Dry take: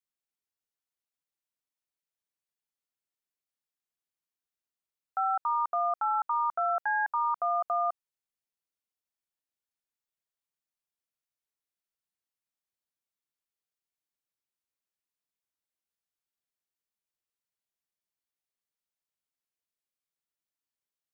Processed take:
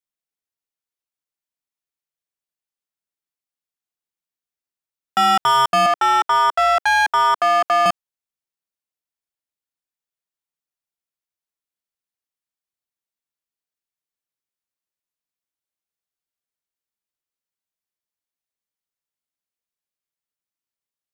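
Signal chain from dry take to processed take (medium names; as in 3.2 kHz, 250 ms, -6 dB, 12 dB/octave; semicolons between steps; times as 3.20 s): waveshaping leveller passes 3; 5.86–7.86 s: high-pass 340 Hz 24 dB/octave; waveshaping leveller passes 1; trim +7.5 dB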